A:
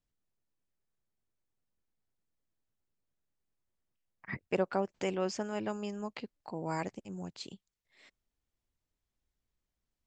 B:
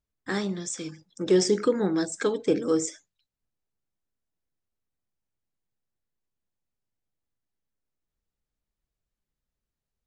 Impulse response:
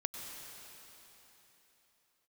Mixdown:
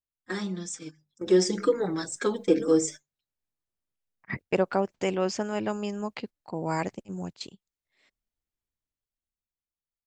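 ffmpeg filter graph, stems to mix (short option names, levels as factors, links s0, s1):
-filter_complex "[0:a]dynaudnorm=f=120:g=17:m=3.98,volume=1.19[s0];[1:a]bandreject=f=50:t=h:w=6,bandreject=f=100:t=h:w=6,bandreject=f=150:t=h:w=6,bandreject=f=200:t=h:w=6,asplit=2[s1][s2];[s2]adelay=4.8,afreqshift=-0.99[s3];[s1][s3]amix=inputs=2:normalize=1,volume=0.944,asplit=2[s4][s5];[s5]apad=whole_len=444002[s6];[s0][s6]sidechaingate=range=0.282:threshold=0.00355:ratio=16:detection=peak[s7];[s7][s4]amix=inputs=2:normalize=0,dynaudnorm=f=320:g=11:m=1.58,agate=range=0.251:threshold=0.0126:ratio=16:detection=peak"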